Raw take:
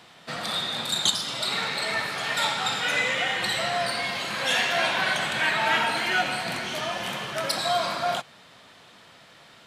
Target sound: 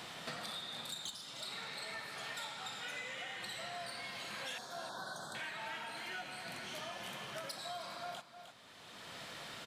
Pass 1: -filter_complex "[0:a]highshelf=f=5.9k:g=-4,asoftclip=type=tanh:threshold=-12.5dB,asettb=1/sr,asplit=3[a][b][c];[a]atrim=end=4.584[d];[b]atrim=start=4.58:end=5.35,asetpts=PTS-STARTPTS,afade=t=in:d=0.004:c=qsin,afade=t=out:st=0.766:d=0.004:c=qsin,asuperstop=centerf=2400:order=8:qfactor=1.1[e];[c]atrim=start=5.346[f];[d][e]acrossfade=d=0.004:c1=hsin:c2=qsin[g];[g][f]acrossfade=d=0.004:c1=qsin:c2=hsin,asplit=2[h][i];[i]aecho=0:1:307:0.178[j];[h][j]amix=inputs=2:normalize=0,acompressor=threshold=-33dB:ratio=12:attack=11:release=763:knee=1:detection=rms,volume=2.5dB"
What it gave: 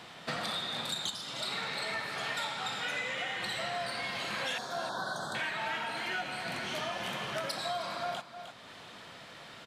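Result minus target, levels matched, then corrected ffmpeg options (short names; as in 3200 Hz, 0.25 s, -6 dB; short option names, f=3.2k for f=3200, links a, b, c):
compressor: peak gain reduction -10 dB; 8000 Hz band -4.0 dB
-filter_complex "[0:a]highshelf=f=5.9k:g=4.5,asoftclip=type=tanh:threshold=-12.5dB,asettb=1/sr,asplit=3[a][b][c];[a]atrim=end=4.584[d];[b]atrim=start=4.58:end=5.35,asetpts=PTS-STARTPTS,afade=t=in:d=0.004:c=qsin,afade=t=out:st=0.766:d=0.004:c=qsin,asuperstop=centerf=2400:order=8:qfactor=1.1[e];[c]atrim=start=5.346[f];[d][e]acrossfade=d=0.004:c1=hsin:c2=qsin[g];[g][f]acrossfade=d=0.004:c1=qsin:c2=hsin,asplit=2[h][i];[i]aecho=0:1:307:0.178[j];[h][j]amix=inputs=2:normalize=0,acompressor=threshold=-42.5dB:ratio=12:attack=11:release=763:knee=1:detection=rms,volume=2.5dB"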